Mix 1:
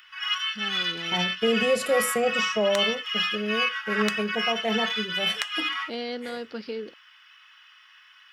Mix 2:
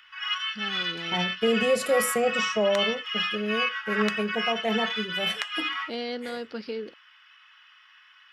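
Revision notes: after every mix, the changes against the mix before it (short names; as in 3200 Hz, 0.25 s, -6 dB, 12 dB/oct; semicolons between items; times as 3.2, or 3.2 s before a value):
background: add high shelf 5700 Hz -11 dB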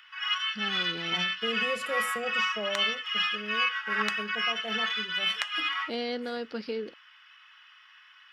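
second voice -11.0 dB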